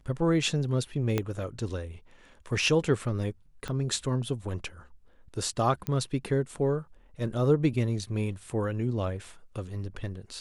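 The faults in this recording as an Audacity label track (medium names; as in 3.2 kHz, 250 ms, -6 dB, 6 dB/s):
1.180000	1.180000	pop -13 dBFS
3.680000	3.680000	pop -21 dBFS
5.870000	5.870000	pop -16 dBFS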